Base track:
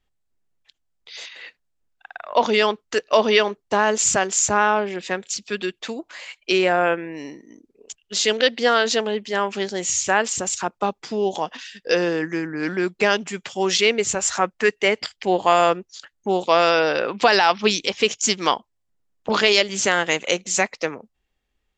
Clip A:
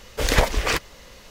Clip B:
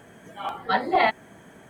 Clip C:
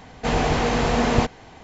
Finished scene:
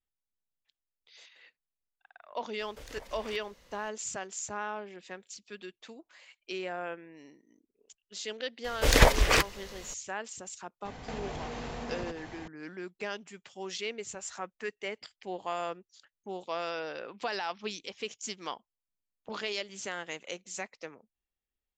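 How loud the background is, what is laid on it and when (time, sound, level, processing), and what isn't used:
base track -18.5 dB
2.59 s: add A -15 dB + compression 4:1, threshold -30 dBFS
8.64 s: add A -1 dB
10.85 s: add C -1.5 dB + compression 16:1, threshold -33 dBFS
not used: B

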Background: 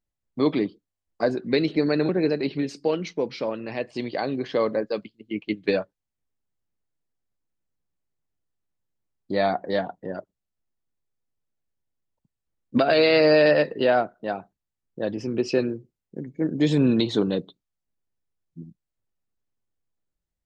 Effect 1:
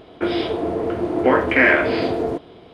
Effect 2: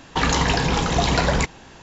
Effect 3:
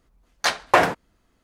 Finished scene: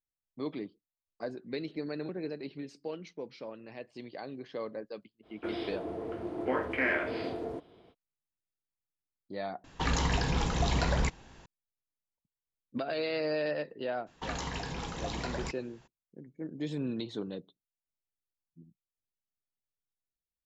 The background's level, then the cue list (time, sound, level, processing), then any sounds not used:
background -15 dB
5.22 s: add 1 -15 dB, fades 0.05 s
9.64 s: replace with 2 -11.5 dB + bass shelf 110 Hz +8 dB
14.06 s: add 2 -17.5 dB, fades 0.02 s
not used: 3

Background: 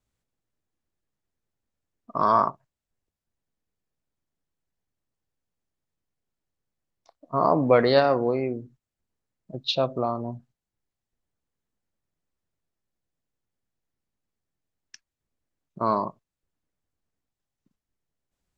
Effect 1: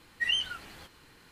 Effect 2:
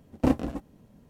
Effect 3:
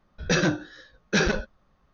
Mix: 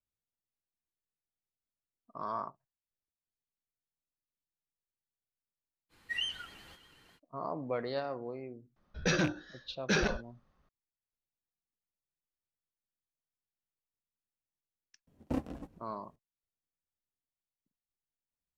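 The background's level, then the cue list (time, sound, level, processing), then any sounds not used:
background -17 dB
5.89 s: add 1 -7 dB, fades 0.05 s + modulated delay 124 ms, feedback 73%, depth 69 cents, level -21 dB
8.76 s: add 3 -7 dB + rattle on loud lows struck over -26 dBFS, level -21 dBFS
15.07 s: add 2 -11.5 dB + frequency-shifting echo 131 ms, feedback 57%, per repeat -120 Hz, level -22 dB

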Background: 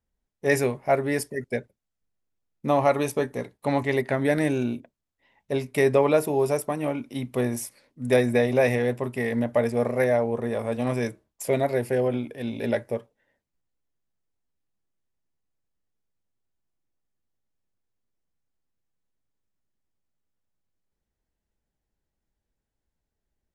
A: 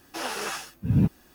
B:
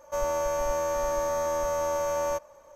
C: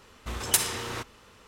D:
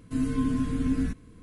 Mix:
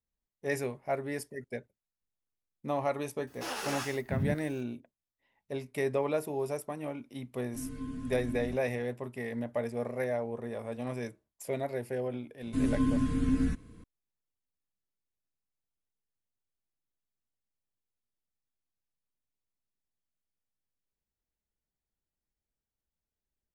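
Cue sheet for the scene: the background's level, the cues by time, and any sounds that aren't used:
background -10.5 dB
3.27 s: add A -4.5 dB + peak limiter -20.5 dBFS
7.43 s: add D -13 dB
12.42 s: add D -1.5 dB
not used: B, C

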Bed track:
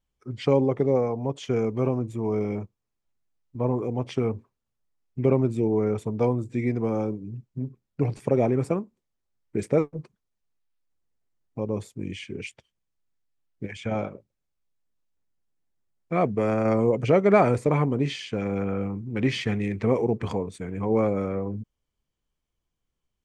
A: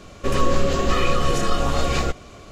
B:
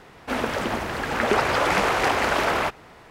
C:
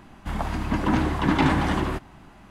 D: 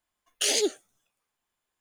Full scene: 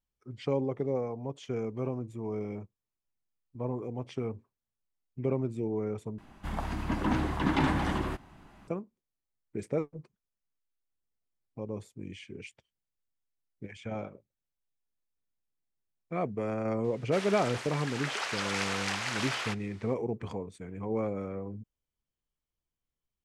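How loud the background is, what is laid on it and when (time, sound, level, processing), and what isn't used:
bed track -9 dB
6.18 s: replace with C -6.5 dB
16.84 s: add B -15 dB + frequency weighting ITU-R 468
not used: A, D

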